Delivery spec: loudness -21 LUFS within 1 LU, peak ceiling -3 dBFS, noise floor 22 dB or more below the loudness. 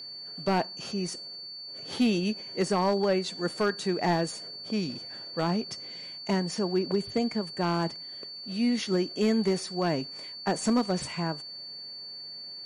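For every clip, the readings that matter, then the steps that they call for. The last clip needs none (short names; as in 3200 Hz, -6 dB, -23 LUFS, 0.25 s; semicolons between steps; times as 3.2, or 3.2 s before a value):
clipped 0.5%; flat tops at -18.0 dBFS; steady tone 4500 Hz; tone level -39 dBFS; loudness -30.0 LUFS; peak -18.0 dBFS; loudness target -21.0 LUFS
-> clip repair -18 dBFS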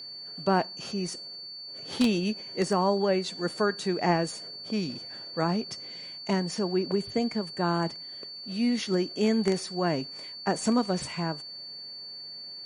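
clipped 0.0%; steady tone 4500 Hz; tone level -39 dBFS
-> notch 4500 Hz, Q 30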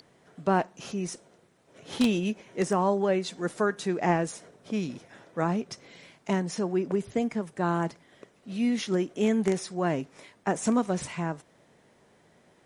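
steady tone none; loudness -29.0 LUFS; peak -9.5 dBFS; loudness target -21.0 LUFS
-> gain +8 dB; limiter -3 dBFS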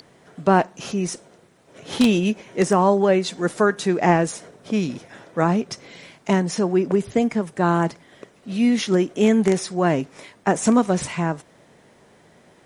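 loudness -21.0 LUFS; peak -3.0 dBFS; noise floor -55 dBFS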